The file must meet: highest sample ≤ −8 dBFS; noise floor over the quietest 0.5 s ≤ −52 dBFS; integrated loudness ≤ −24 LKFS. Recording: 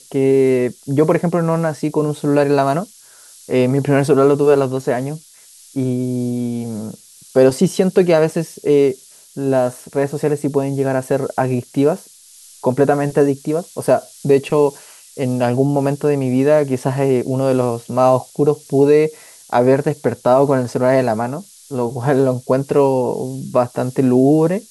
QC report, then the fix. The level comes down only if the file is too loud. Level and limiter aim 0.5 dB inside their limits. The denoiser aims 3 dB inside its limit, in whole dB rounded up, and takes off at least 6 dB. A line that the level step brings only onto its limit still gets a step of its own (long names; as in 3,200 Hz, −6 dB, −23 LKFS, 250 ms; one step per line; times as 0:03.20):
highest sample −2.0 dBFS: out of spec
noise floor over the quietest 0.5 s −45 dBFS: out of spec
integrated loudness −17.0 LKFS: out of spec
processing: level −7.5 dB